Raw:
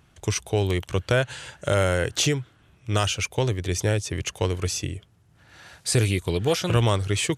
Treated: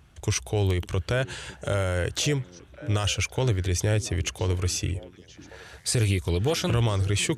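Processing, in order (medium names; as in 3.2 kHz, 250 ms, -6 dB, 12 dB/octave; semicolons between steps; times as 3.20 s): peaking EQ 65 Hz +10 dB 0.78 oct; peak limiter -15.5 dBFS, peak gain reduction 7 dB; repeats whose band climbs or falls 552 ms, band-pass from 250 Hz, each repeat 1.4 oct, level -11.5 dB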